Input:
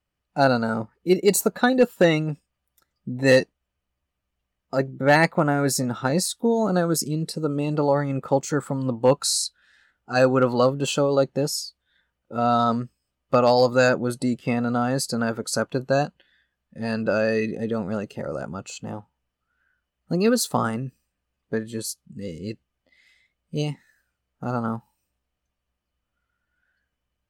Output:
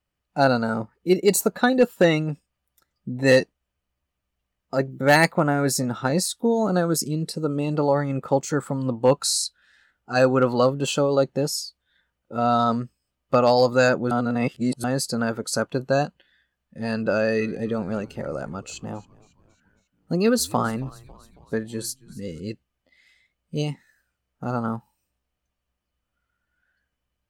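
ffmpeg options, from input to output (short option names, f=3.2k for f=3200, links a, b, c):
-filter_complex "[0:a]asplit=3[a][b][c];[a]afade=t=out:st=4.9:d=0.02[d];[b]aemphasis=mode=production:type=50kf,afade=t=in:st=4.9:d=0.02,afade=t=out:st=5.31:d=0.02[e];[c]afade=t=in:st=5.31:d=0.02[f];[d][e][f]amix=inputs=3:normalize=0,asettb=1/sr,asplit=3[g][h][i];[g]atrim=end=17.114[j];[h]atrim=start=17.11:end=22.4,asetpts=PTS-STARTPTS,afade=t=in:d=0.004:c=qsin,afade=t=out:st=5.286:d=0.004:c=qsin,asplit=5[k][l][m][n][o];[l]adelay=274,afreqshift=-99,volume=-22dB[p];[m]adelay=548,afreqshift=-198,volume=-26.9dB[q];[n]adelay=822,afreqshift=-297,volume=-31.8dB[r];[o]adelay=1096,afreqshift=-396,volume=-36.6dB[s];[k][p][q][r][s]amix=inputs=5:normalize=0,atrim=end_sample=233289[t];[i]atrim=start=22.396[u];[j][t]acrossfade=d=0.004:c1=hsin:c2=qsin[v];[v][u]acrossfade=d=0.004:c1=qsin:c2=hsin,asplit=3[w][x][y];[w]atrim=end=14.112[z];[x]atrim=start=14.108:end=14.842,asetpts=PTS-STARTPTS,areverse[aa];[y]atrim=start=14.838[ab];[z][aa]acrossfade=d=0.004:c1=hsin:c2=hsin[ac];[ac][ab]acrossfade=d=0.004:c1=hsin:c2=hsin"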